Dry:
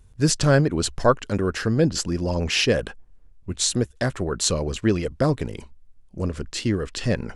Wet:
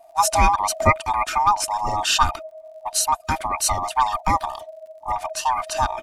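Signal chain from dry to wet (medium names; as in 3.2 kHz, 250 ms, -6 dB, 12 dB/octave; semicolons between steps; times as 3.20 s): split-band scrambler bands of 500 Hz; wide varispeed 1.22×; comb 3.3 ms, depth 49%; crackle 60 per s -47 dBFS; trim +1 dB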